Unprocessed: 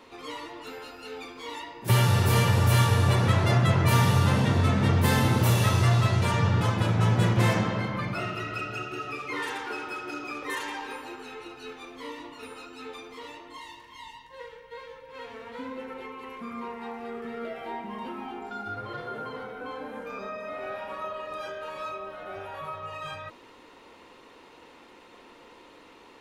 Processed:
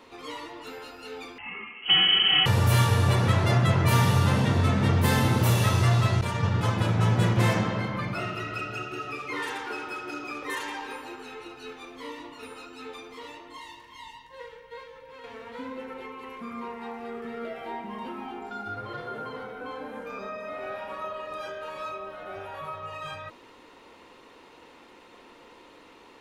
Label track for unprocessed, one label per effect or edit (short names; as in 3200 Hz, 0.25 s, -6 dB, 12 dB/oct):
1.380000	2.460000	inverted band carrier 3100 Hz
6.210000	6.630000	expander -21 dBFS
14.830000	15.240000	compressor, threshold -42 dBFS